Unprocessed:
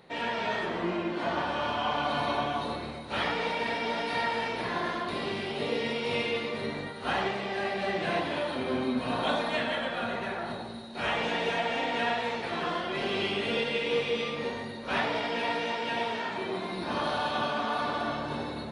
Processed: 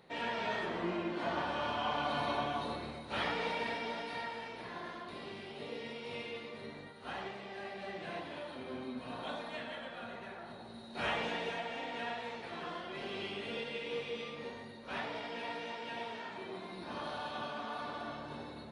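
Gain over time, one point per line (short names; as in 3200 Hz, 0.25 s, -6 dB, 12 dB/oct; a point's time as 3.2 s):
3.57 s -5.5 dB
4.4 s -13 dB
10.53 s -13 dB
11 s -4 dB
11.67 s -11 dB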